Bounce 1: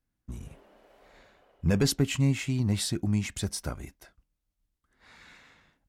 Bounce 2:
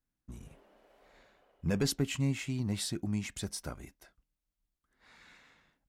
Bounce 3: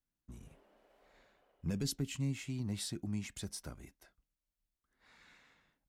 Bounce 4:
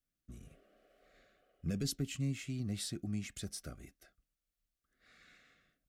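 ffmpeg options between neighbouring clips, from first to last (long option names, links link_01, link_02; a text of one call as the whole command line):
ffmpeg -i in.wav -af "equalizer=frequency=82:width_type=o:width=1.1:gain=-5,volume=-5dB" out.wav
ffmpeg -i in.wav -filter_complex "[0:a]acrossover=split=340|3000[link_01][link_02][link_03];[link_02]acompressor=threshold=-45dB:ratio=6[link_04];[link_01][link_04][link_03]amix=inputs=3:normalize=0,volume=-4.5dB" out.wav
ffmpeg -i in.wav -af "asuperstop=centerf=920:order=20:qfactor=2.8" out.wav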